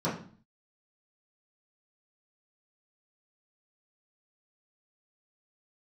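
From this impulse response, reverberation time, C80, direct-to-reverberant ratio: 0.45 s, 11.5 dB, −11.0 dB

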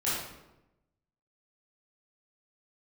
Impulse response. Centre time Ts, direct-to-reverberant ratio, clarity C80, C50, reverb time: 72 ms, −10.5 dB, 3.0 dB, −1.0 dB, 0.95 s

